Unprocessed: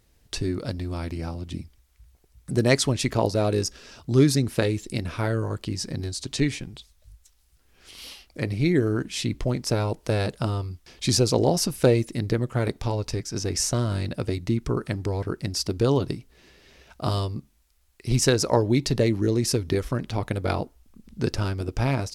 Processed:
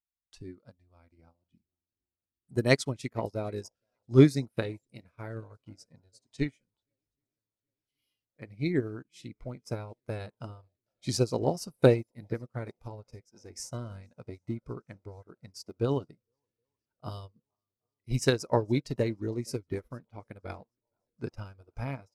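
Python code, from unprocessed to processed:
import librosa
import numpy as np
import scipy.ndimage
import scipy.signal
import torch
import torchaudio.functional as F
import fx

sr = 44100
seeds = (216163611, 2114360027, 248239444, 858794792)

y = fx.echo_swing(x, sr, ms=773, ratio=1.5, feedback_pct=69, wet_db=-23.0)
y = fx.noise_reduce_blind(y, sr, reduce_db=10)
y = fx.upward_expand(y, sr, threshold_db=-39.0, expansion=2.5)
y = y * 10.0 ** (1.5 / 20.0)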